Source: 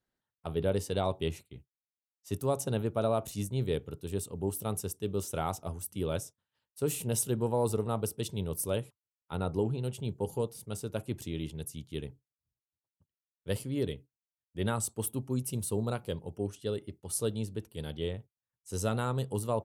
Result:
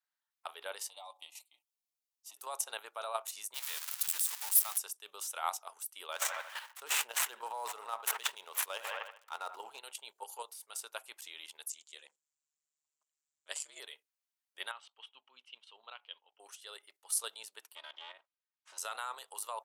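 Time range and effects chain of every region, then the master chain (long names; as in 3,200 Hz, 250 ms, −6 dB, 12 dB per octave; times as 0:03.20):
0:00.88–0:02.37: comb filter 6.8 ms, depth 60% + downward compressor 2 to 1, threshold −44 dBFS + phaser with its sweep stopped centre 420 Hz, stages 6
0:03.54–0:04.78: spike at every zero crossing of −25.5 dBFS + high-pass filter 620 Hz 24 dB per octave
0:06.12–0:09.79: running median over 9 samples + delay with a band-pass on its return 80 ms, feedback 33%, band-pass 1,200 Hz, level −16 dB + level that may fall only so fast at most 23 dB per second
0:11.70–0:13.80: ring modulation 74 Hz + low-pass with resonance 7,400 Hz, resonance Q 6.9
0:14.71–0:16.40: transistor ladder low-pass 3,300 Hz, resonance 70% + parametric band 250 Hz +6 dB 0.38 octaves
0:17.75–0:18.78: lower of the sound and its delayed copy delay 3.2 ms + band-pass filter 300–4,200 Hz + downward compressor 8 to 1, threshold −40 dBFS
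whole clip: high-pass filter 880 Hz 24 dB per octave; output level in coarse steps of 9 dB; level +5.5 dB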